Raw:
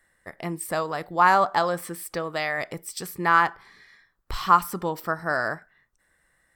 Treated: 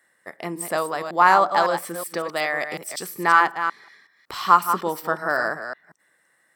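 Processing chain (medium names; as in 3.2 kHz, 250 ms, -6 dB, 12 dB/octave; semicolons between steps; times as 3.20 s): chunks repeated in reverse 185 ms, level -8 dB; high-pass 230 Hz 12 dB/octave; trim +2.5 dB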